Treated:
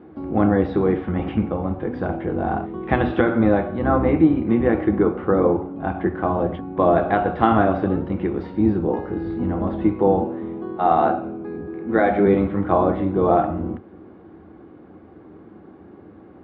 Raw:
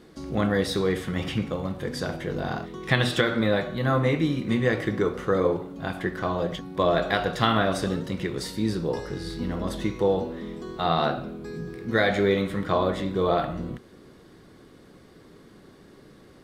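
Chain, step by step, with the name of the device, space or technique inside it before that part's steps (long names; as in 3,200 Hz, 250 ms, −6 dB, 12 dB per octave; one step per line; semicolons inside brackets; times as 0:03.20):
0:10.24–0:12.26: high-pass filter 220 Hz 12 dB per octave
sub-octave bass pedal (sub-octave generator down 1 octave, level −3 dB; loudspeaker in its box 75–2,200 Hz, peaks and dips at 78 Hz +6 dB, 130 Hz −8 dB, 210 Hz +4 dB, 320 Hz +9 dB, 780 Hz +9 dB, 1,900 Hz −7 dB)
level +2.5 dB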